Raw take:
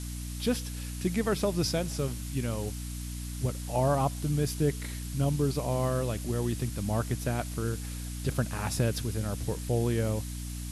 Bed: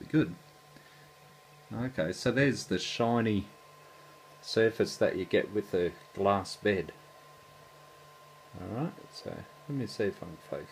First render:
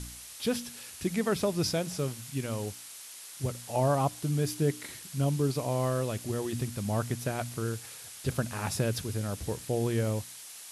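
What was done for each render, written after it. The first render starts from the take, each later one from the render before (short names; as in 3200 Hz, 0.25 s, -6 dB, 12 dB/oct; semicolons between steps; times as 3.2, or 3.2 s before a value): de-hum 60 Hz, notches 5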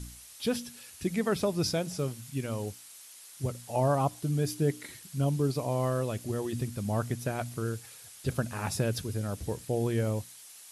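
denoiser 6 dB, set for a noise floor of -46 dBFS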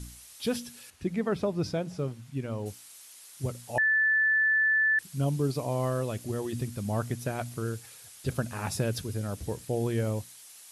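0.9–2.66 LPF 1800 Hz 6 dB/oct; 3.78–4.99 bleep 1750 Hz -21 dBFS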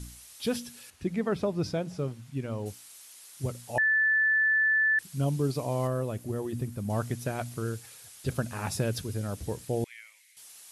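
5.87–6.9 bell 4800 Hz -8 dB 2.7 oct; 9.84–10.37 ladder high-pass 2000 Hz, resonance 80%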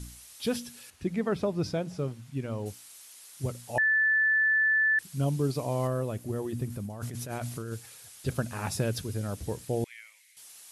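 6.7–7.73 negative-ratio compressor -36 dBFS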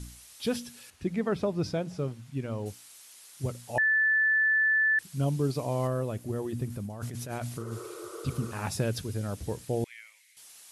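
high shelf 11000 Hz -4.5 dB; 7.62–8.49 spectral repair 340–2100 Hz before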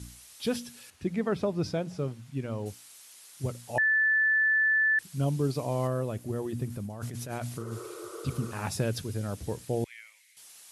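HPF 57 Hz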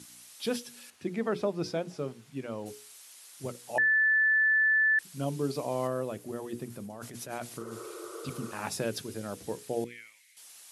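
HPF 210 Hz 12 dB/oct; notches 60/120/180/240/300/360/420/480 Hz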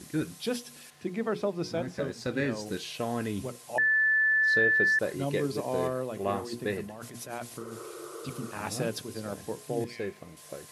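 add bed -4 dB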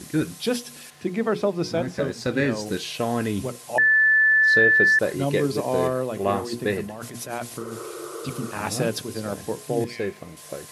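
gain +7 dB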